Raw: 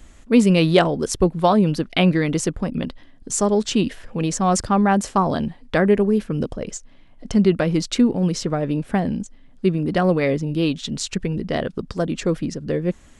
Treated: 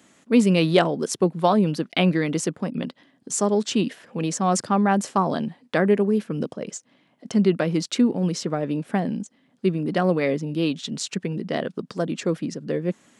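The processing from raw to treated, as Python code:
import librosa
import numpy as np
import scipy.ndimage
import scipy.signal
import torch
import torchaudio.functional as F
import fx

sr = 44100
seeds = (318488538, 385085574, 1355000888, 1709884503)

y = scipy.signal.sosfilt(scipy.signal.butter(4, 150.0, 'highpass', fs=sr, output='sos'), x)
y = y * 10.0 ** (-2.5 / 20.0)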